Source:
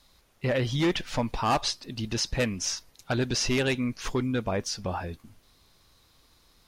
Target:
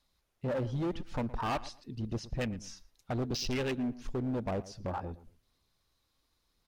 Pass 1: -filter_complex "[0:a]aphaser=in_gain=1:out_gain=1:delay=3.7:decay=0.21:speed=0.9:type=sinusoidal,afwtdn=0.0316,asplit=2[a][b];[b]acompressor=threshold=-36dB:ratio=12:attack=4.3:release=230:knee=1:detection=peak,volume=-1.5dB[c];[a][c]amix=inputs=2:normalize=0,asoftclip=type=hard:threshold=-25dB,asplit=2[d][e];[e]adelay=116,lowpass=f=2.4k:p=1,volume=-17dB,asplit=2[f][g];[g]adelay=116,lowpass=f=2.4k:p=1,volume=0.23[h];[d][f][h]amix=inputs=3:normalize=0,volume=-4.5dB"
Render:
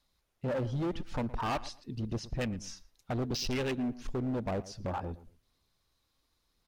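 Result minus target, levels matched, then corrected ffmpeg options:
compressor: peak gain reduction -9.5 dB
-filter_complex "[0:a]aphaser=in_gain=1:out_gain=1:delay=3.7:decay=0.21:speed=0.9:type=sinusoidal,afwtdn=0.0316,asplit=2[a][b];[b]acompressor=threshold=-46.5dB:ratio=12:attack=4.3:release=230:knee=1:detection=peak,volume=-1.5dB[c];[a][c]amix=inputs=2:normalize=0,asoftclip=type=hard:threshold=-25dB,asplit=2[d][e];[e]adelay=116,lowpass=f=2.4k:p=1,volume=-17dB,asplit=2[f][g];[g]adelay=116,lowpass=f=2.4k:p=1,volume=0.23[h];[d][f][h]amix=inputs=3:normalize=0,volume=-4.5dB"

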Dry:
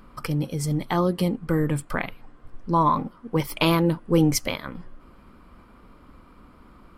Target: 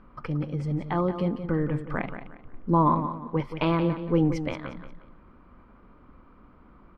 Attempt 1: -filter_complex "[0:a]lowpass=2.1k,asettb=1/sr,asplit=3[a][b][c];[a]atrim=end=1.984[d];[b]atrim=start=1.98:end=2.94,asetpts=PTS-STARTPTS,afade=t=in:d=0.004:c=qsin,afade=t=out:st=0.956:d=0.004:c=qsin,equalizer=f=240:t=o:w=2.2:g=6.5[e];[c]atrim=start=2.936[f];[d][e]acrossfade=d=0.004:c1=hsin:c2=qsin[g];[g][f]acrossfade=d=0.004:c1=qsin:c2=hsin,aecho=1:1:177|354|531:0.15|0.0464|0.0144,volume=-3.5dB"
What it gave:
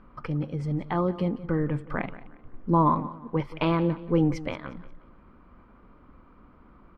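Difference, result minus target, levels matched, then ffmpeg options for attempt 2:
echo-to-direct -6.5 dB
-filter_complex "[0:a]lowpass=2.1k,asettb=1/sr,asplit=3[a][b][c];[a]atrim=end=1.984[d];[b]atrim=start=1.98:end=2.94,asetpts=PTS-STARTPTS,afade=t=in:d=0.004:c=qsin,afade=t=out:st=0.956:d=0.004:c=qsin,equalizer=f=240:t=o:w=2.2:g=6.5[e];[c]atrim=start=2.936[f];[d][e]acrossfade=d=0.004:c1=hsin:c2=qsin[g];[g][f]acrossfade=d=0.004:c1=qsin:c2=hsin,aecho=1:1:177|354|531:0.316|0.098|0.0304,volume=-3.5dB"

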